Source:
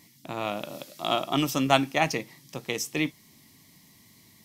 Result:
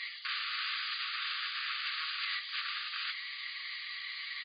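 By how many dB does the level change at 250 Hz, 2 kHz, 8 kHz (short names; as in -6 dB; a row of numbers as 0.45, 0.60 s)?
under -40 dB, -1.5 dB, under -40 dB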